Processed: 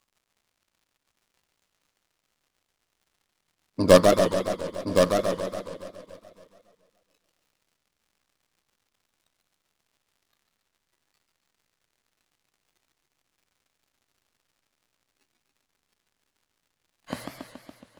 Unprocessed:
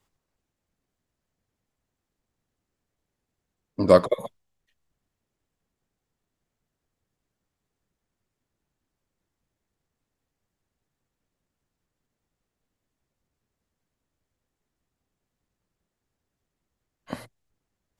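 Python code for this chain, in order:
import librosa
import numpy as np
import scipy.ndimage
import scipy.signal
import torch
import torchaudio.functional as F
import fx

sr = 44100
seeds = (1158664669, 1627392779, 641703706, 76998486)

y = fx.tracing_dist(x, sr, depth_ms=0.15)
y = fx.high_shelf(y, sr, hz=3700.0, db=9.0)
y = fx.dmg_crackle(y, sr, seeds[0], per_s=69.0, level_db=-43.0)
y = fx.high_shelf(y, sr, hz=9100.0, db=-4.5)
y = y + 10.0 ** (-5.5 / 20.0) * np.pad(y, (int(1067 * sr / 1000.0), 0))[:len(y)]
y = fx.noise_reduce_blind(y, sr, reduce_db=10)
y = fx.echo_feedback(y, sr, ms=281, feedback_pct=53, wet_db=-14.0)
y = fx.echo_warbled(y, sr, ms=140, feedback_pct=58, rate_hz=2.8, cents=217, wet_db=-5.0)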